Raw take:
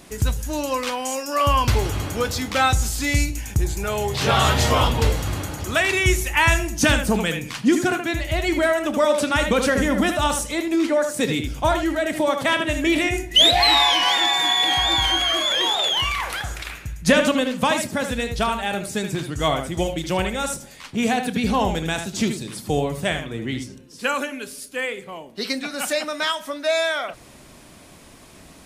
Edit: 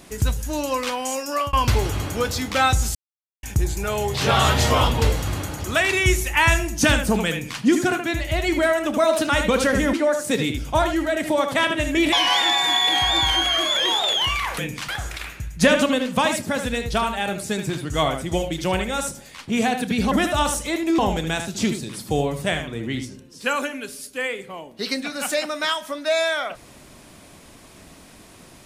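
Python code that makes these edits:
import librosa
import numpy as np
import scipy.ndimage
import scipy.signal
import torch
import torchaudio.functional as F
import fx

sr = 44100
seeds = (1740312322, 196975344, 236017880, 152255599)

y = fx.edit(x, sr, fx.fade_out_span(start_s=1.27, length_s=0.26, curve='qsin'),
    fx.silence(start_s=2.95, length_s=0.48),
    fx.duplicate(start_s=7.31, length_s=0.3, to_s=16.34),
    fx.speed_span(start_s=8.98, length_s=0.34, speed=1.08),
    fx.move(start_s=9.96, length_s=0.87, to_s=21.57),
    fx.cut(start_s=13.02, length_s=0.86), tone=tone)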